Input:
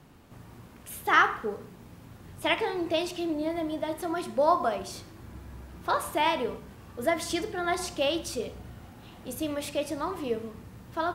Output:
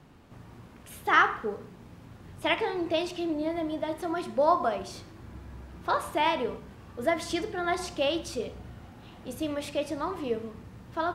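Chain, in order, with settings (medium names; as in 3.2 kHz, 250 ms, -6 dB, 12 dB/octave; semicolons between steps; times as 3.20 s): treble shelf 9 kHz -11.5 dB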